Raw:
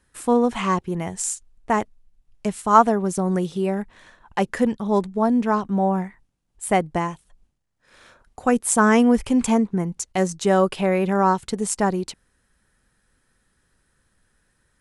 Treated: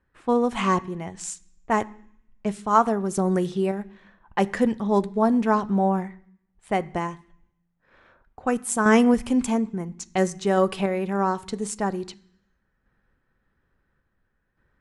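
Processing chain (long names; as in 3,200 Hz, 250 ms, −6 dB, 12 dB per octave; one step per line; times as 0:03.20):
low-pass that shuts in the quiet parts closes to 1,900 Hz, open at −18 dBFS
sample-and-hold tremolo
on a send: convolution reverb RT60 0.65 s, pre-delay 3 ms, DRR 12.5 dB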